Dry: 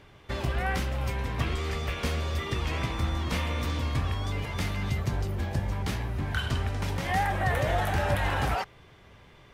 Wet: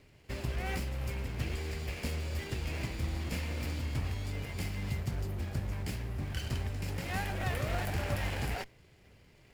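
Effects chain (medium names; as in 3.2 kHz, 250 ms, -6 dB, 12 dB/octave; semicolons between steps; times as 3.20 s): comb filter that takes the minimum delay 0.41 ms; treble shelf 6.7 kHz +6.5 dB; in parallel at -9.5 dB: decimation with a swept rate 25×, swing 160% 2.4 Hz; on the sum: trim -8 dB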